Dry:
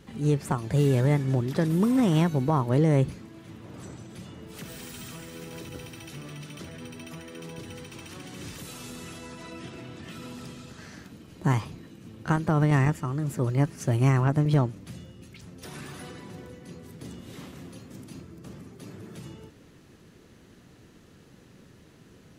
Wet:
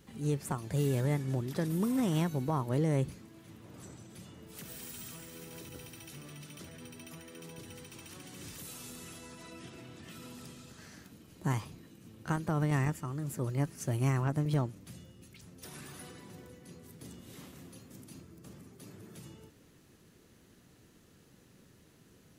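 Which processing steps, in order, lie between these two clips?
treble shelf 7.6 kHz +11.5 dB; trim -8 dB

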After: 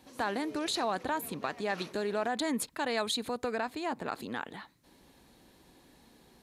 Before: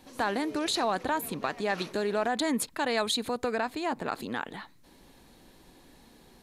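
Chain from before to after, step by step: high-pass 42 Hz; trim -3.5 dB

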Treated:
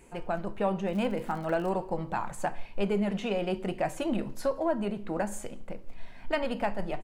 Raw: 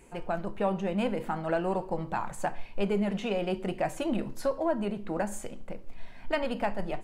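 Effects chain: 0.87–1.68 s: crackle 68 per s -37 dBFS; echo from a far wall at 30 m, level -29 dB

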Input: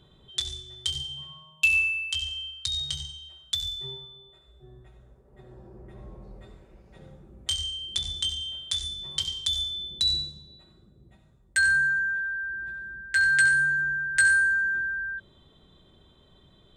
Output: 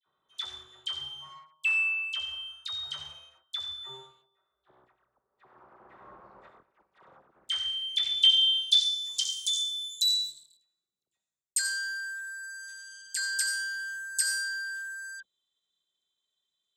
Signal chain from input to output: waveshaping leveller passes 3; phase dispersion lows, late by 63 ms, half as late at 1.5 kHz; band-pass sweep 1.2 kHz -> 7 kHz, 7.28–9.36 s

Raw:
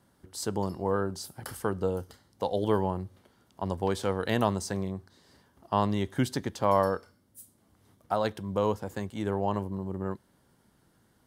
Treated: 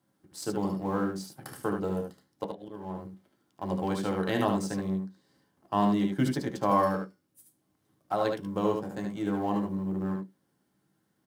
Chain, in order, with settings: companding laws mixed up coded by A; high-pass 110 Hz 12 dB/octave; 2.44–3.05 s: slow attack 508 ms; early reflections 59 ms -16 dB, 74 ms -5 dB; on a send at -5 dB: reverberation RT60 0.15 s, pre-delay 3 ms; on the sum: trim -2.5 dB

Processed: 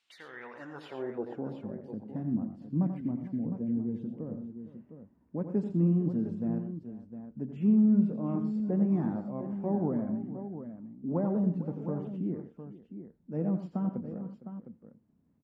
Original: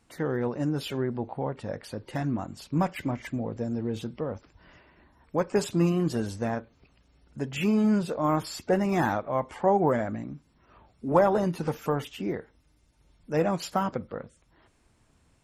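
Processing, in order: band-pass sweep 3.3 kHz -> 210 Hz, 0.22–1.56 s; multi-tap echo 87/120/458/708 ms -9/-13/-16.5/-10.5 dB; trim +1.5 dB

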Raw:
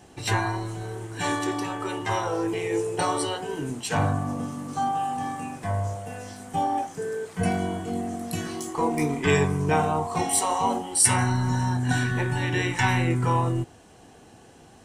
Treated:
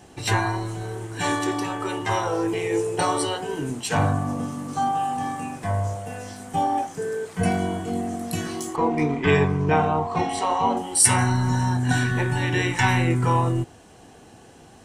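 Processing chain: 8.76–10.77 s: low-pass 3.7 kHz 12 dB/octave; trim +2.5 dB

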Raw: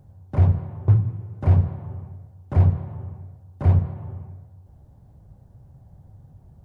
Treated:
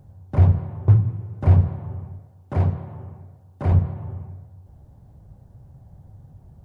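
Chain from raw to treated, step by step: 2.19–3.72 s: high-pass 160 Hz 6 dB/octave; trim +2 dB

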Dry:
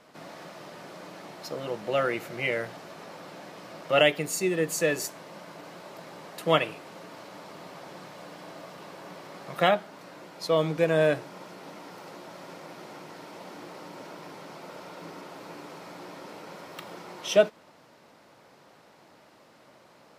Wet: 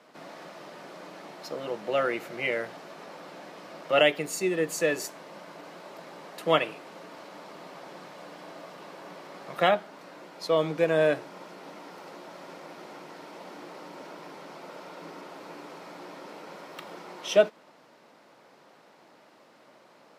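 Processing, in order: high-pass 190 Hz 12 dB/octave; treble shelf 6 kHz -5 dB

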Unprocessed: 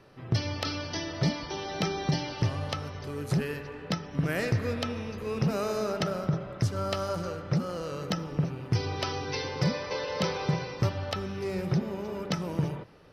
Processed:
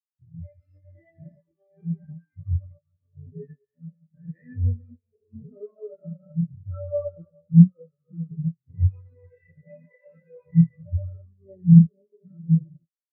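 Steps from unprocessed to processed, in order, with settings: spectrogram pixelated in time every 200 ms; peaking EQ 1.9 kHz +8.5 dB 0.88 oct; feedback comb 83 Hz, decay 0.24 s, harmonics all, mix 90%; chorus 0.88 Hz, delay 19.5 ms, depth 6.3 ms; bass shelf 470 Hz +2.5 dB; Chebyshev shaper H 7 -20 dB, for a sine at -25.5 dBFS; loudness maximiser +34 dB; spectral contrast expander 4:1; trim -1 dB

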